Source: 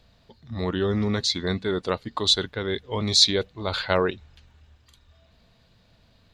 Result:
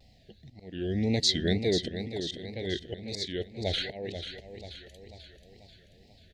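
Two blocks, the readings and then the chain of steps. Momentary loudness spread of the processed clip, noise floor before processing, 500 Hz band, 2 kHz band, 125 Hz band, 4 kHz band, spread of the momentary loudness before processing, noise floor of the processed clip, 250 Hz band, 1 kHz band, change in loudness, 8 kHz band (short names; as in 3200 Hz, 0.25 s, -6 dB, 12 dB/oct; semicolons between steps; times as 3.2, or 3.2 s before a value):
22 LU, -60 dBFS, -6.0 dB, -8.0 dB, -4.0 dB, -8.5 dB, 12 LU, -59 dBFS, -3.5 dB, -16.0 dB, -7.0 dB, -8.5 dB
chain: elliptic band-stop 750–1800 Hz, stop band 50 dB; auto swell 0.603 s; feedback echo 0.488 s, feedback 51%, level -9 dB; wow and flutter 150 cents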